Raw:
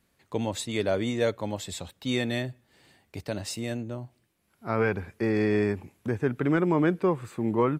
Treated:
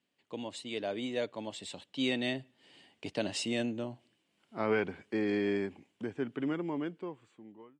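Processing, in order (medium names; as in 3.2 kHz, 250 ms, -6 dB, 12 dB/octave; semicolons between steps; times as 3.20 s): fade out at the end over 1.33 s; Doppler pass-by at 3.55 s, 14 m/s, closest 14 m; cabinet simulation 190–8300 Hz, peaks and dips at 270 Hz +4 dB, 1.3 kHz -4 dB, 3 kHz +10 dB, 6.1 kHz -3 dB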